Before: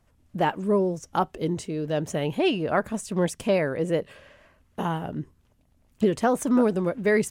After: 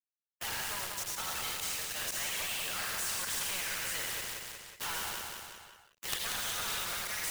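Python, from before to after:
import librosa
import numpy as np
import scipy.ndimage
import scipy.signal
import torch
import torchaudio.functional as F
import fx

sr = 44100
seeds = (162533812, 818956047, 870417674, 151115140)

p1 = fx.spec_trails(x, sr, decay_s=0.66)
p2 = scipy.signal.sosfilt(scipy.signal.butter(4, 1300.0, 'highpass', fs=sr, output='sos'), p1)
p3 = fx.over_compress(p2, sr, threshold_db=-35.0, ratio=-0.5)
p4 = p2 + (p3 * 10.0 ** (0.5 / 20.0))
p5 = fx.auto_swell(p4, sr, attack_ms=104.0)
p6 = fx.lowpass_res(p5, sr, hz=3600.0, q=9.2, at=(6.08, 6.84))
p7 = fx.quant_companded(p6, sr, bits=2)
p8 = fx.chorus_voices(p7, sr, voices=6, hz=0.87, base_ms=10, depth_ms=1.3, mix_pct=65)
p9 = fx.echo_feedback(p8, sr, ms=184, feedback_pct=35, wet_db=-8.0)
p10 = fx.spectral_comp(p9, sr, ratio=2.0)
y = p10 * 10.0 ** (-5.0 / 20.0)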